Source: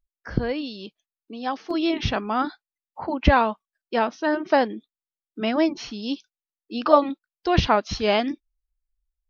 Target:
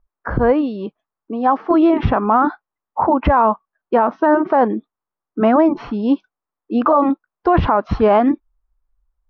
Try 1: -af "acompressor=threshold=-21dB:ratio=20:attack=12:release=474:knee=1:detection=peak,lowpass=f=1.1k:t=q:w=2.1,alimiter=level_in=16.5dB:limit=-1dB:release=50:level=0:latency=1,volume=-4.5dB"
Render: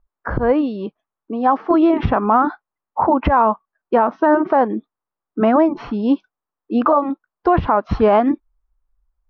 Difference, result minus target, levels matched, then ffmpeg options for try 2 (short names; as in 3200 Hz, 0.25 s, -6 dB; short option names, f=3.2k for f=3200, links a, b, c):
compressor: peak gain reduction +14 dB
-af "lowpass=f=1.1k:t=q:w=2.1,alimiter=level_in=16.5dB:limit=-1dB:release=50:level=0:latency=1,volume=-4.5dB"